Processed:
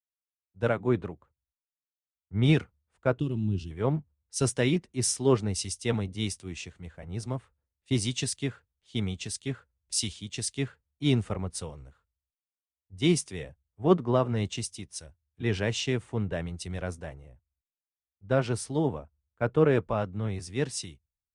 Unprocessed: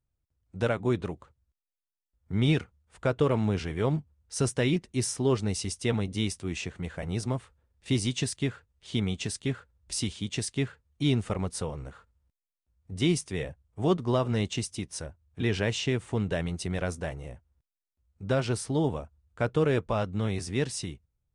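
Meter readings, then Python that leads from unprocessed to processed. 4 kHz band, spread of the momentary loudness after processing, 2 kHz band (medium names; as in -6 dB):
0.0 dB, 14 LU, -1.0 dB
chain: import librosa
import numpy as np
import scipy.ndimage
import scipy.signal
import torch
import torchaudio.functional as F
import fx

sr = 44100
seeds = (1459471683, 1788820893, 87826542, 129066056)

y = fx.spec_box(x, sr, start_s=3.19, length_s=0.52, low_hz=390.0, high_hz=2500.0, gain_db=-21)
y = fx.band_widen(y, sr, depth_pct=100)
y = y * librosa.db_to_amplitude(-1.5)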